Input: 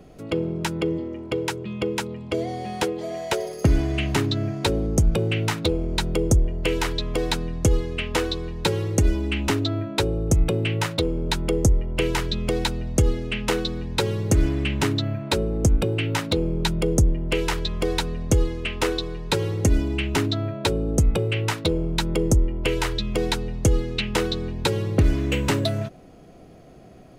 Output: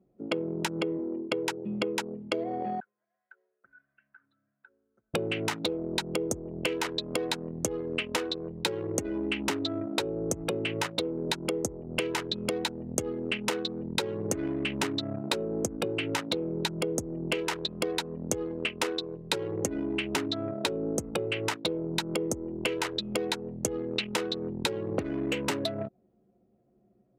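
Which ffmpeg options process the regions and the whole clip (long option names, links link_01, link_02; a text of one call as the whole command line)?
ffmpeg -i in.wav -filter_complex "[0:a]asettb=1/sr,asplit=3[link_01][link_02][link_03];[link_01]atrim=end=2.804[link_04];[link_02]atrim=start=2.8:end=5.14,asetpts=PTS-STARTPTS,afade=type=in:duration=0.004:curve=qsin,afade=type=out:start_time=2.336:duration=0.004:curve=qsin,bandpass=frequency=1500:width_type=q:width=6.7,acompressor=threshold=-38dB:ratio=12:attack=3.2:release=140:knee=1:detection=peak[link_05];[link_03]atrim=start=5.136[link_06];[link_04][link_05]acrossfade=duration=0.004:curve1=hsin:curve2=qsin[link_07];[link_07][link_06]acrossfade=duration=0.004:curve1=qsin:curve2=hsin,anlmdn=100,highpass=240,acompressor=threshold=-35dB:ratio=6,volume=7dB" out.wav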